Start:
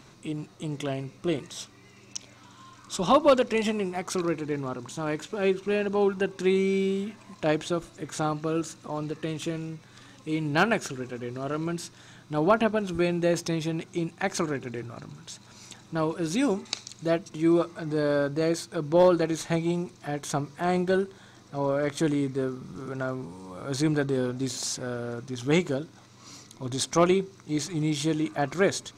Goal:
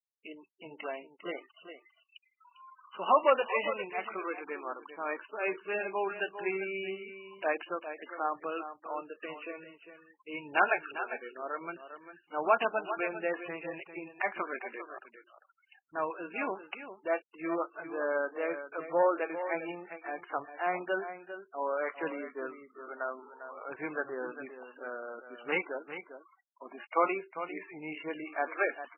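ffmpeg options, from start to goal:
-af "highpass=710,afftfilt=real='re*gte(hypot(re,im),0.00891)':imag='im*gte(hypot(re,im),0.00891)':win_size=1024:overlap=0.75,aecho=1:1:400:0.282" -ar 16000 -c:a libmp3lame -b:a 8k

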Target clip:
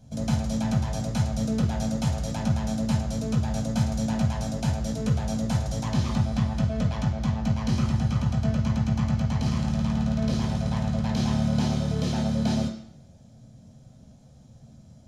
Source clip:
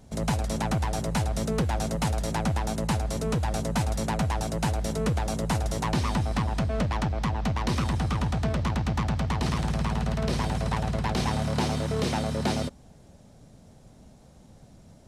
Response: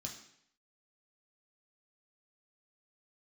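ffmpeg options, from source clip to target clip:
-filter_complex "[0:a]asettb=1/sr,asplit=3[a][b][c];[a]atrim=end=7.404[d];[b]atrim=start=7.4:end=9.72,asetpts=PTS-STARTPTS,afade=t=in:d=0.004:c=qsin,afade=t=out:st=2.316:d=0.004:c=qsin,bandreject=f=3.6k:w=12[e];[c]atrim=start=9.716[f];[d][e]acrossfade=d=0.004:c1=hsin:c2=qsin[g];[g][f]acrossfade=d=0.004:c1=qsin:c2=hsin[h];[1:a]atrim=start_sample=2205[i];[h][i]afir=irnorm=-1:irlink=0,volume=-2dB"

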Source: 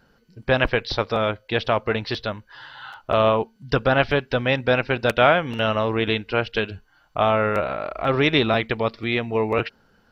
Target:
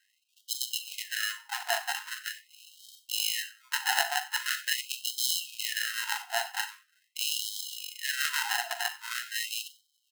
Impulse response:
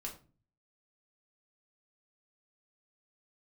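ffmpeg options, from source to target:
-filter_complex "[0:a]lowshelf=f=270:g=-10,asplit=2[a][b];[b]adelay=93,lowpass=f=3.7k:p=1,volume=-20.5dB,asplit=2[c][d];[d]adelay=93,lowpass=f=3.7k:p=1,volume=0.31[e];[a][c][e]amix=inputs=3:normalize=0,acrusher=samples=38:mix=1:aa=0.000001,asplit=2[f][g];[1:a]atrim=start_sample=2205,adelay=41[h];[g][h]afir=irnorm=-1:irlink=0,volume=-7.5dB[i];[f][i]amix=inputs=2:normalize=0,afftfilt=real='re*gte(b*sr/1024,680*pow(3000/680,0.5+0.5*sin(2*PI*0.43*pts/sr)))':imag='im*gte(b*sr/1024,680*pow(3000/680,0.5+0.5*sin(2*PI*0.43*pts/sr)))':win_size=1024:overlap=0.75"

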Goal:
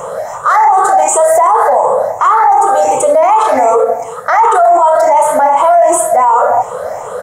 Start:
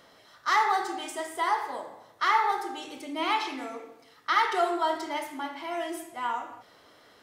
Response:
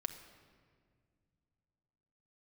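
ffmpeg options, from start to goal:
-af "afftfilt=real='re*pow(10,11/40*sin(2*PI*(0.69*log(max(b,1)*sr/1024/100)/log(2)-(2.7)*(pts-256)/sr)))':imag='im*pow(10,11/40*sin(2*PI*(0.69*log(max(b,1)*sr/1024/100)/log(2)-(2.7)*(pts-256)/sr)))':win_size=1024:overlap=0.75,firequalizer=gain_entry='entry(180,0);entry(310,-19);entry(500,13);entry(1800,-7);entry(3200,-19);entry(4800,-20);entry(7000,7);entry(9900,-2);entry(15000,-6)':delay=0.05:min_phase=1,alimiter=level_in=29.5dB:limit=-1dB:release=50:level=0:latency=1,volume=-1dB"

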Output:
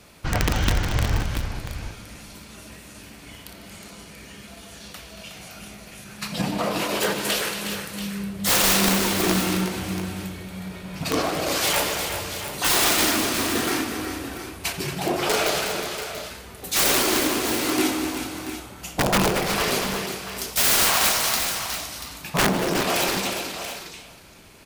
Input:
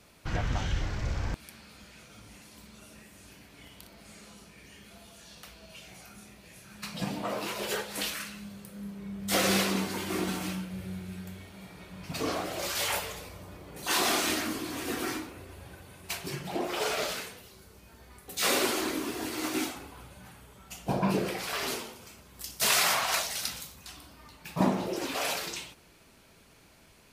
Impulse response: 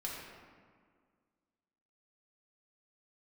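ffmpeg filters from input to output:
-filter_complex "[0:a]asplit=2[a][b];[b]aecho=0:1:459:0.15[c];[a][c]amix=inputs=2:normalize=0,aeval=exprs='(mod(11.2*val(0)+1,2)-1)/11.2':c=same,atempo=1.1,asplit=2[d][e];[e]aecho=0:1:87|150|230|364|685|721:0.119|0.2|0.299|0.398|0.282|0.112[f];[d][f]amix=inputs=2:normalize=0,volume=8dB"

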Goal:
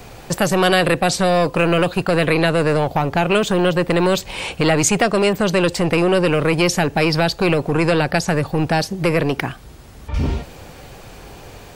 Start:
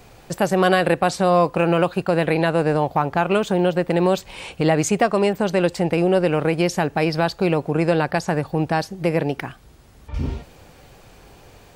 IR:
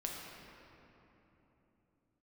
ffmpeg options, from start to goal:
-filter_complex "[0:a]acrossover=split=780|2000[a][b][c];[a]asoftclip=type=tanh:threshold=-22.5dB[d];[b]acompressor=threshold=-35dB:ratio=6[e];[d][e][c]amix=inputs=3:normalize=0,volume=8.5dB"

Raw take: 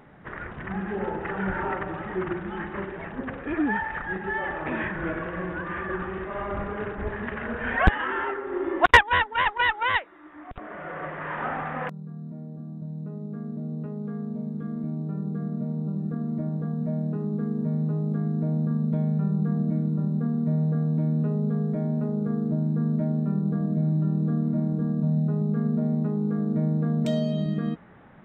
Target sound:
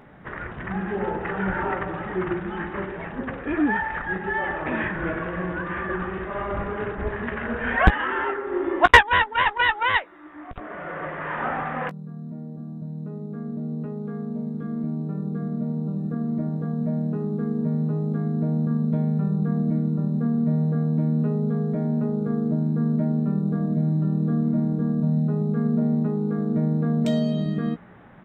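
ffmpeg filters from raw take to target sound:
-filter_complex "[0:a]asplit=2[a][b];[b]adelay=17,volume=-11.5dB[c];[a][c]amix=inputs=2:normalize=0,volume=2.5dB"

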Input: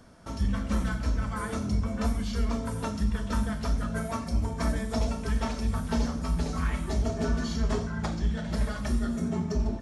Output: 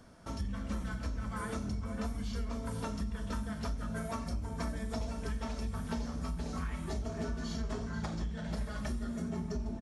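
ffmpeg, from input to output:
-filter_complex "[0:a]asplit=2[a][b];[b]aecho=0:1:487:0.237[c];[a][c]amix=inputs=2:normalize=0,acompressor=threshold=-30dB:ratio=6,volume=-3dB"

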